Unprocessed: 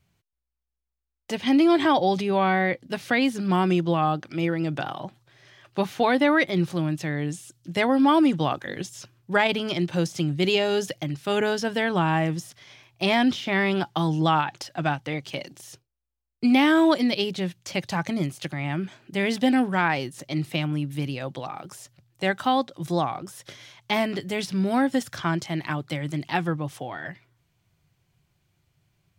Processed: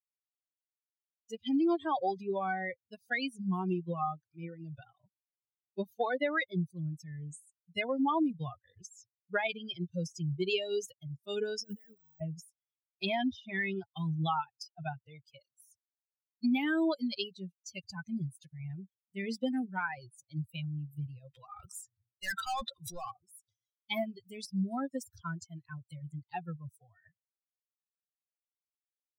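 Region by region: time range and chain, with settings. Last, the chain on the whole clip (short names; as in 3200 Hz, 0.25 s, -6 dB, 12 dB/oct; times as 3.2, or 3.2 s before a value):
11.63–12.21 negative-ratio compressor -34 dBFS + careless resampling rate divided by 2×, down filtered, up hold
21.34–23.11 bell 1700 Hz +10.5 dB 2.2 oct + hard clip -21.5 dBFS + transient shaper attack -2 dB, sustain +11 dB
whole clip: per-bin expansion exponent 3; compressor 2:1, threshold -31 dBFS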